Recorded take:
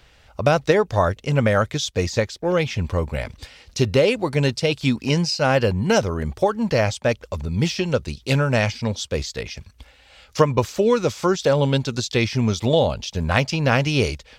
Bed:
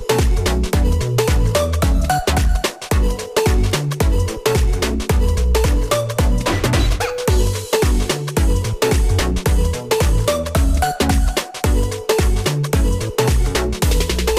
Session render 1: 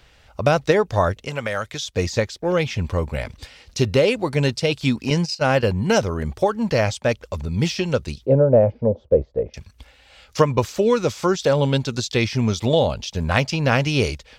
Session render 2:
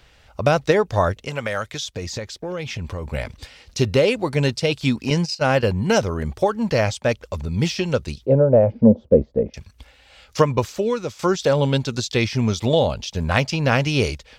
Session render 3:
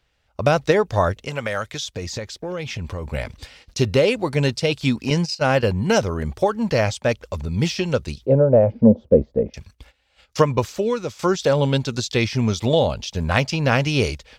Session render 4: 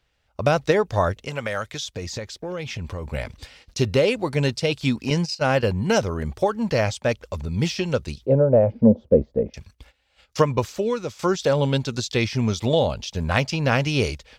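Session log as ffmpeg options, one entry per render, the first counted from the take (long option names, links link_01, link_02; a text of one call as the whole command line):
ffmpeg -i in.wav -filter_complex "[0:a]asettb=1/sr,asplit=3[link_01][link_02][link_03];[link_01]atrim=end=1.184[link_04];[link_02]atrim=start=1.18:end=1.92,asetpts=PTS-STARTPTS,afade=type=in:duration=0.004:curve=qsin,afade=type=out:start_time=0.736:duration=0.004:curve=qsin,acrossover=split=500|1900[link_05][link_06][link_07];[link_05]acompressor=threshold=-33dB:ratio=4[link_08];[link_06]acompressor=threshold=-26dB:ratio=4[link_09];[link_07]acompressor=threshold=-27dB:ratio=4[link_10];[link_08][link_09][link_10]amix=inputs=3:normalize=0[link_11];[link_03]atrim=start=1.916[link_12];[link_04][link_11]acrossfade=duration=0.004:curve1=hsin:curve2=qsin[link_13];[link_13][link_12]acrossfade=duration=0.004:curve1=qsin:curve2=hsin,asettb=1/sr,asplit=3[link_14][link_15][link_16];[link_14]atrim=end=5.104[link_17];[link_15]atrim=start=5.1:end=5.63,asetpts=PTS-STARTPTS,afade=type=in:duration=0.004:curve=qsin,afade=type=out:start_time=0.526:duration=0.004:curve=qsin,agate=range=-11dB:threshold=-24dB:ratio=16:release=100:detection=peak[link_18];[link_16]atrim=start=5.626[link_19];[link_17][link_18]acrossfade=duration=0.004:curve1=hsin:curve2=qsin[link_20];[link_20][link_19]acrossfade=duration=0.004:curve1=qsin:curve2=hsin,asettb=1/sr,asplit=3[link_21][link_22][link_23];[link_21]atrim=end=8.264[link_24];[link_22]atrim=start=8.26:end=9.54,asetpts=PTS-STARTPTS,afade=type=in:duration=0.004:curve=qsin,afade=type=out:start_time=1.276:duration=0.004:curve=qsin,lowpass=frequency=540:width_type=q:width=3.9[link_25];[link_23]atrim=start=9.536[link_26];[link_24][link_25]acrossfade=duration=0.004:curve1=hsin:curve2=qsin[link_27];[link_27][link_26]acrossfade=duration=0.004:curve1=qsin:curve2=hsin" out.wav
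ffmpeg -i in.wav -filter_complex "[0:a]asettb=1/sr,asplit=3[link_01][link_02][link_03];[link_01]atrim=end=1.854[link_04];[link_02]atrim=start=1.85:end=3.05,asetpts=PTS-STARTPTS,afade=type=in:duration=0.004:curve=qsin,afade=type=out:start_time=1.196:duration=0.004:curve=qsin,acompressor=threshold=-25dB:ratio=6:attack=3.2:release=140:knee=1:detection=peak[link_05];[link_03]atrim=start=3.046[link_06];[link_04][link_05]acrossfade=duration=0.004:curve1=hsin:curve2=qsin[link_07];[link_07][link_06]acrossfade=duration=0.004:curve1=qsin:curve2=hsin,asettb=1/sr,asplit=3[link_08][link_09][link_10];[link_08]atrim=end=8.704[link_11];[link_09]atrim=start=8.7:end=9.5,asetpts=PTS-STARTPTS,afade=type=in:duration=0.004:curve=qsin,afade=type=out:start_time=0.796:duration=0.004:curve=qsin,equalizer=frequency=220:width_type=o:width=0.82:gain=13.5[link_12];[link_10]atrim=start=9.496[link_13];[link_11][link_12]acrossfade=duration=0.004:curve1=hsin:curve2=qsin[link_14];[link_14][link_13]acrossfade=duration=0.004:curve1=qsin:curve2=hsin,asplit=2[link_15][link_16];[link_15]atrim=end=11.19,asetpts=PTS-STARTPTS,afade=type=out:start_time=10.48:duration=0.71:silence=0.334965[link_17];[link_16]atrim=start=11.19,asetpts=PTS-STARTPTS,afade=type=in:duration=0.004:curve=hsin:silence=0.334965[link_18];[link_17][link_18]concat=n=2:v=0:a=1" out.wav
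ffmpeg -i in.wav -af "agate=range=-15dB:threshold=-46dB:ratio=16:detection=peak" out.wav
ffmpeg -i in.wav -af "volume=-2dB" out.wav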